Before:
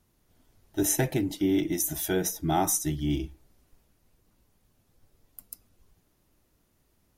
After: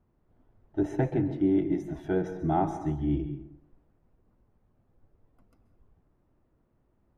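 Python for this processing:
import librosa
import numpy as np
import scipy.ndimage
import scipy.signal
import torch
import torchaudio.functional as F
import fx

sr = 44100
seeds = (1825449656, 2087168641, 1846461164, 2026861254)

y = scipy.signal.sosfilt(scipy.signal.butter(2, 1200.0, 'lowpass', fs=sr, output='sos'), x)
y = fx.rev_plate(y, sr, seeds[0], rt60_s=0.72, hf_ratio=0.55, predelay_ms=120, drr_db=10.0)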